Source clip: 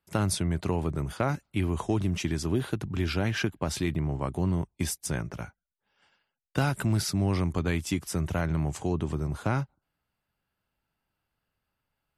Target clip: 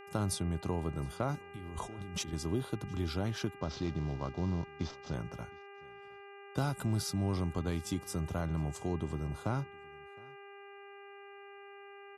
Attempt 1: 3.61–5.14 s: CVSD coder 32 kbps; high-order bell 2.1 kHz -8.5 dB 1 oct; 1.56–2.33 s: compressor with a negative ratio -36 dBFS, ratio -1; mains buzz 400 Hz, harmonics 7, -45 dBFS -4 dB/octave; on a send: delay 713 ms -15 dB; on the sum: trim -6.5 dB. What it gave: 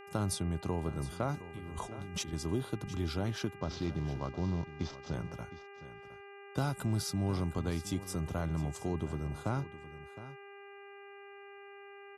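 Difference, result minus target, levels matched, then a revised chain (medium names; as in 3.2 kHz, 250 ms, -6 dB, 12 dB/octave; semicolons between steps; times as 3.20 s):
echo-to-direct +11 dB
3.61–5.14 s: CVSD coder 32 kbps; high-order bell 2.1 kHz -8.5 dB 1 oct; 1.56–2.33 s: compressor with a negative ratio -36 dBFS, ratio -1; mains buzz 400 Hz, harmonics 7, -45 dBFS -4 dB/octave; on a send: delay 713 ms -26 dB; on the sum: trim -6.5 dB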